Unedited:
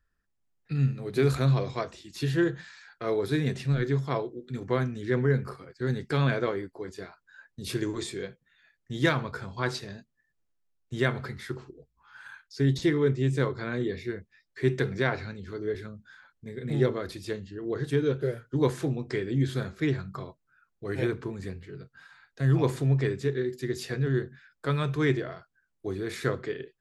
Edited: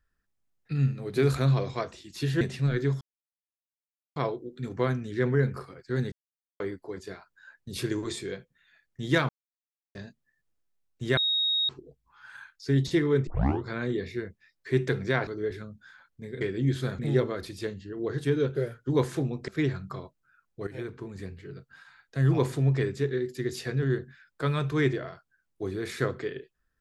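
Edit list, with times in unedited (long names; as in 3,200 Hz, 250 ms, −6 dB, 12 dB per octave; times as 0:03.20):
0:02.41–0:03.47: remove
0:04.07: splice in silence 1.15 s
0:06.03–0:06.51: silence
0:09.20–0:09.86: silence
0:11.08–0:11.60: beep over 3,760 Hz −23 dBFS
0:13.18: tape start 0.37 s
0:15.18–0:15.51: remove
0:19.14–0:19.72: move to 0:16.65
0:20.91–0:21.70: fade in linear, from −13 dB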